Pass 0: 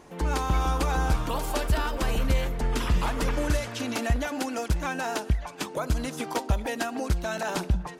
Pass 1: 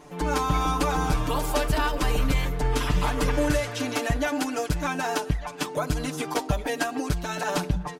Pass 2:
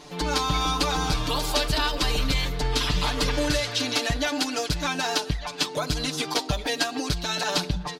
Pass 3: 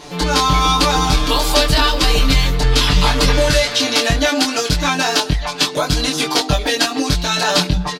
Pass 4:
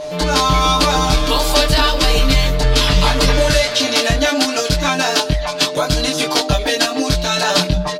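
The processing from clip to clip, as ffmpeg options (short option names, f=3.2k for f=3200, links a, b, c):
-af "aecho=1:1:6.8:0.94"
-filter_complex "[0:a]equalizer=f=4.2k:w=1.2:g=14.5,asplit=2[a][b];[b]acompressor=threshold=-29dB:ratio=6,volume=-2dB[c];[a][c]amix=inputs=2:normalize=0,volume=-4dB"
-filter_complex "[0:a]asplit=2[a][b];[b]adelay=22,volume=-3dB[c];[a][c]amix=inputs=2:normalize=0,volume=8dB"
-af "aeval=exprs='val(0)+0.0631*sin(2*PI*610*n/s)':c=same"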